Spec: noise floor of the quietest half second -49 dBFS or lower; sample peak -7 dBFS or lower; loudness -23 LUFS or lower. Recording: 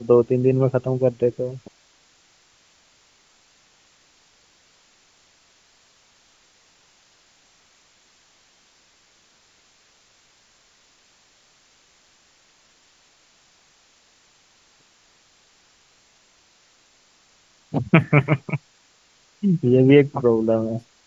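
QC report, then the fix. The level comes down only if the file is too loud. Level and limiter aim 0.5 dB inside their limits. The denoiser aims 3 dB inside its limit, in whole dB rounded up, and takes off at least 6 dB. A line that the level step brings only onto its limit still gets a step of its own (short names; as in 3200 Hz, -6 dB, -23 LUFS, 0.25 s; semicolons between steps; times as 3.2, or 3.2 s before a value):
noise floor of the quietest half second -58 dBFS: OK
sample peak -2.0 dBFS: fail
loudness -19.5 LUFS: fail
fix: gain -4 dB; limiter -7.5 dBFS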